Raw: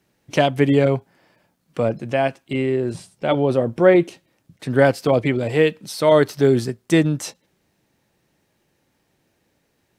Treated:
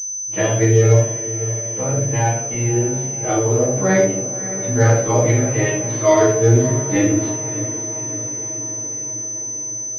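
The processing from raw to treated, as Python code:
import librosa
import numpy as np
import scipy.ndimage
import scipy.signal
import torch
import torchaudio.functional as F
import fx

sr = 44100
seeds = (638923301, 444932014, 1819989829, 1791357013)

y = fx.frame_reverse(x, sr, frame_ms=32.0)
y = y + 0.49 * np.pad(y, (int(6.5 * sr / 1000.0), 0))[:len(y)]
y = fx.echo_diffused(y, sr, ms=587, feedback_pct=63, wet_db=-13.0)
y = fx.room_shoebox(y, sr, seeds[0], volume_m3=100.0, walls='mixed', distance_m=2.2)
y = fx.pwm(y, sr, carrier_hz=6100.0)
y = y * librosa.db_to_amplitude(-6.0)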